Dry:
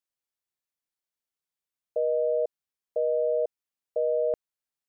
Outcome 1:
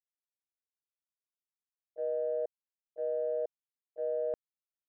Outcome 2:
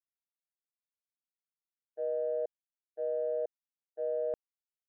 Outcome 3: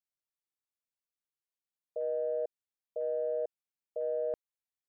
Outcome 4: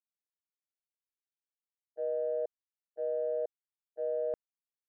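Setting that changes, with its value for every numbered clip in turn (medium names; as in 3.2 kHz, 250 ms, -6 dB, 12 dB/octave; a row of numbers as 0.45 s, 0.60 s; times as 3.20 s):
gate, range: -27 dB, -60 dB, -9 dB, -40 dB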